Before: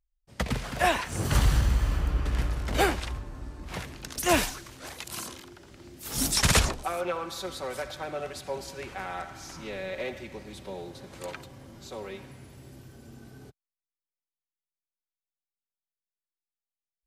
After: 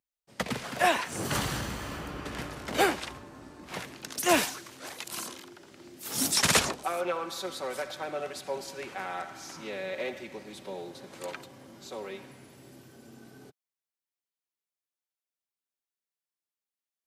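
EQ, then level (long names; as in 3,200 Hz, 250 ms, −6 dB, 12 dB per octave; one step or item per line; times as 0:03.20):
high-pass filter 190 Hz 12 dB per octave
0.0 dB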